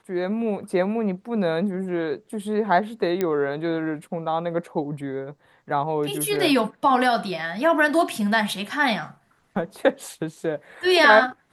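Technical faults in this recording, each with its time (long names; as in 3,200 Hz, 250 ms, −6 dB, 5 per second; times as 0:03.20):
0:03.21: click −11 dBFS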